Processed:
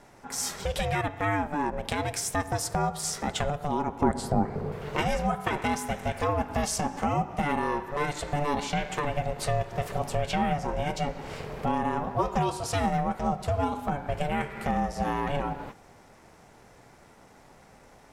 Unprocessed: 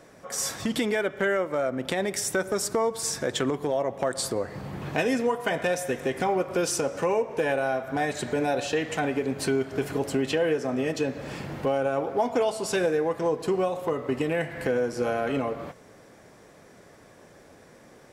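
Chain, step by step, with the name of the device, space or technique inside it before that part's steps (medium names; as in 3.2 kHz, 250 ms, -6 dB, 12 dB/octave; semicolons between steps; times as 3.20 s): alien voice (ring modulator 290 Hz; flange 0.15 Hz, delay 2.9 ms, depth 7.1 ms, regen -90%); 4.01–4.72 s: tilt shelf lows +8.5 dB, about 1.3 kHz; trim +5.5 dB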